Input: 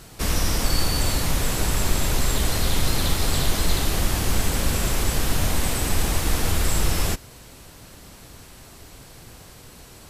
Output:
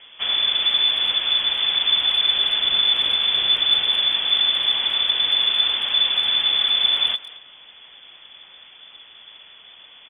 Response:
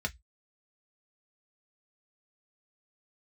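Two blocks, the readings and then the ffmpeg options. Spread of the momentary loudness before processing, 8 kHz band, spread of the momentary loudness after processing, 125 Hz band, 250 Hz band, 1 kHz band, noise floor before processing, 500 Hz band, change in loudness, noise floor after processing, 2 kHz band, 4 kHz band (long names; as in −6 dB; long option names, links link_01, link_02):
1 LU, below −30 dB, 2 LU, below −25 dB, below −15 dB, −4.0 dB, −46 dBFS, −10.5 dB, +7.0 dB, −47 dBFS, +2.0 dB, +15.0 dB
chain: -filter_complex "[0:a]lowpass=frequency=3000:width_type=q:width=0.5098,lowpass=frequency=3000:width_type=q:width=0.6013,lowpass=frequency=3000:width_type=q:width=0.9,lowpass=frequency=3000:width_type=q:width=2.563,afreqshift=-3500,asplit=2[link_01][link_02];[link_02]adelay=220,highpass=300,lowpass=3400,asoftclip=type=hard:threshold=-17dB,volume=-16dB[link_03];[link_01][link_03]amix=inputs=2:normalize=0"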